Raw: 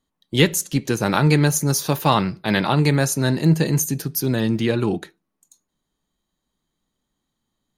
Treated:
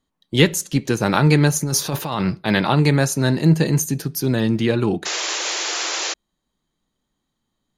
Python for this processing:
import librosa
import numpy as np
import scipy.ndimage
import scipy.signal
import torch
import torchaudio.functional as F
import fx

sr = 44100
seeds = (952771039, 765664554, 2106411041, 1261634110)

y = fx.high_shelf(x, sr, hz=11000.0, db=-8.5)
y = fx.over_compress(y, sr, threshold_db=-23.0, ratio=-1.0, at=(1.64, 2.35))
y = fx.spec_paint(y, sr, seeds[0], shape='noise', start_s=5.05, length_s=1.09, low_hz=300.0, high_hz=7400.0, level_db=-26.0)
y = F.gain(torch.from_numpy(y), 1.5).numpy()